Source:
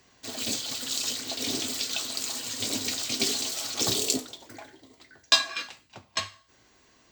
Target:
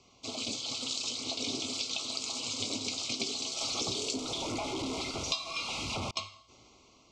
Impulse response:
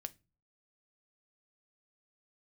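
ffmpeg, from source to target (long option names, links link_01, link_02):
-filter_complex "[0:a]asettb=1/sr,asplit=3[link_01][link_02][link_03];[link_01]atrim=end=3.614[link_04];[link_02]atrim=start=3.61:end=6.11,asetpts=PTS-STARTPTS,afade=type=in:duration=0.004:curve=qsin,afade=type=out:start_time=2.496:duration=0.004:curve=qsin,aeval=exprs='val(0)+0.5*0.0501*sgn(val(0))':channel_layout=same[link_05];[link_03]atrim=start=6.106[link_06];[link_04][link_05]acrossfade=duration=0.004:curve1=hsin:curve2=qsin[link_07];[link_07][link_06]acrossfade=duration=0.004:curve1=qsin:curve2=hsin,asuperstop=centerf=1700:order=12:qfactor=2.3,dynaudnorm=framelen=310:gausssize=5:maxgain=7.5dB,lowpass=frequency=6800:width=0.5412,lowpass=frequency=6800:width=1.3066,acompressor=threshold=-34dB:ratio=4"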